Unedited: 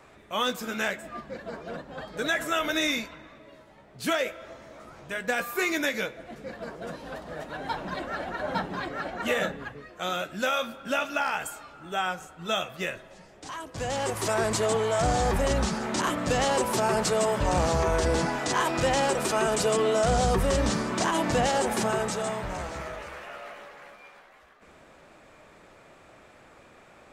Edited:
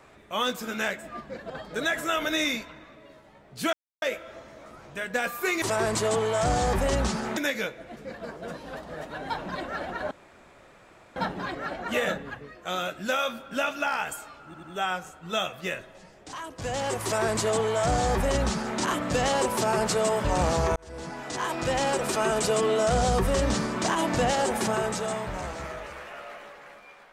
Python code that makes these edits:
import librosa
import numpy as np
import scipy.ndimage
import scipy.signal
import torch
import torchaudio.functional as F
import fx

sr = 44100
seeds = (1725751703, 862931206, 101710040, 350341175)

y = fx.edit(x, sr, fx.cut(start_s=1.5, length_s=0.43),
    fx.insert_silence(at_s=4.16, length_s=0.29),
    fx.insert_room_tone(at_s=8.5, length_s=1.05),
    fx.stutter(start_s=11.79, slice_s=0.09, count=3),
    fx.duplicate(start_s=14.2, length_s=1.75, to_s=5.76),
    fx.fade_in_span(start_s=17.92, length_s=1.66, curve='qsin'), tone=tone)